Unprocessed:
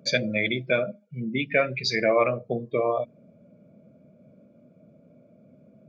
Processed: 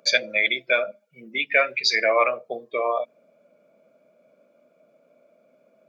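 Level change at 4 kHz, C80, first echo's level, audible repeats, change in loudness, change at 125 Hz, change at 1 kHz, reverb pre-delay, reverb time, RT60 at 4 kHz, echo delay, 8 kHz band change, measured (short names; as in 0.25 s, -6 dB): +6.0 dB, none, none, none, +3.5 dB, under -20 dB, +4.5 dB, none, none, none, none, n/a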